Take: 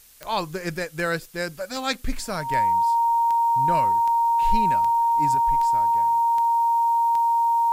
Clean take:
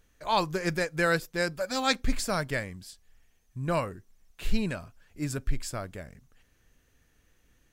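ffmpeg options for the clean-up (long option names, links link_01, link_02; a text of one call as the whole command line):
ffmpeg -i in.wav -af "adeclick=threshold=4,bandreject=frequency=930:width=30,agate=range=-21dB:threshold=-29dB,asetnsamples=nb_out_samples=441:pad=0,asendcmd='5.35 volume volume 5.5dB',volume=0dB" out.wav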